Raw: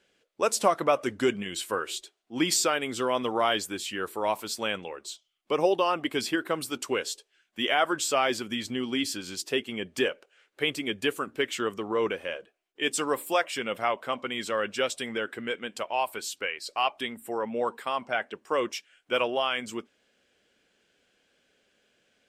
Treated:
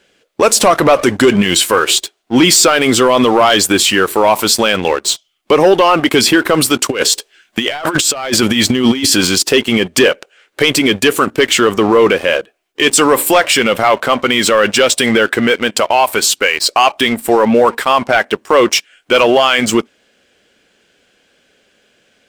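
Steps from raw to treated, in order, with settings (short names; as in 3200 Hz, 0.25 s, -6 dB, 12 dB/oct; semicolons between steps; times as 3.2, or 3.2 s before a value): sample leveller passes 2; 6.9–9.43 negative-ratio compressor -27 dBFS, ratio -0.5; maximiser +18.5 dB; gain -1 dB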